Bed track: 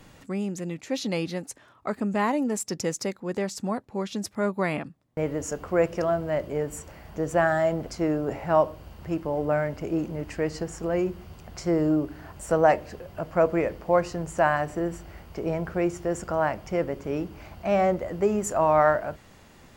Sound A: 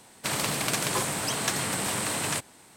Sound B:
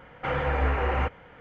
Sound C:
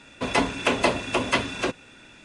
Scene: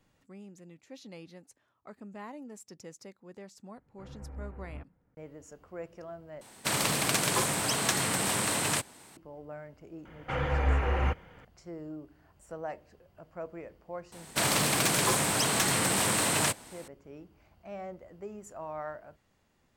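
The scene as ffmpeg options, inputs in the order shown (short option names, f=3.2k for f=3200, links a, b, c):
-filter_complex "[2:a]asplit=2[a][b];[1:a]asplit=2[c][d];[0:a]volume=-19dB[e];[a]firequalizer=gain_entry='entry(260,0);entry(460,-11);entry(3400,-27)':delay=0.05:min_phase=1[f];[b]bass=f=250:g=5,treble=f=4k:g=11[g];[d]aeval=exprs='0.299*sin(PI/2*2.51*val(0)/0.299)':c=same[h];[e]asplit=2[i][j];[i]atrim=end=6.414[k];[c]atrim=end=2.76[l];[j]atrim=start=9.166[m];[f]atrim=end=1.4,asetpts=PTS-STARTPTS,volume=-15.5dB,afade=t=in:d=0.004:c=hsin,afade=t=out:st=1.396:d=0.004:c=hsin,adelay=3750[n];[g]atrim=end=1.4,asetpts=PTS-STARTPTS,volume=-5dB,afade=t=in:d=0.004:c=hsin,afade=t=out:st=1.396:d=0.004:c=hsin,adelay=10050[o];[h]atrim=end=2.76,asetpts=PTS-STARTPTS,volume=-9dB,afade=t=in:d=0.004:c=hsin,afade=t=out:st=2.756:d=0.004:c=hsin,adelay=622692S[p];[k][l]acrossfade=d=0.004:c1=hsin:c2=hsin[q];[q][m]acrossfade=d=0.004:c1=hsin:c2=hsin[r];[r][n][o][p]amix=inputs=4:normalize=0"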